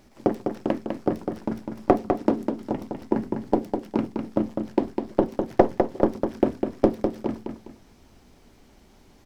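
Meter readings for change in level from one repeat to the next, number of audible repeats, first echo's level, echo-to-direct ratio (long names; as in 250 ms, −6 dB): −10.0 dB, 2, −5.5 dB, −5.0 dB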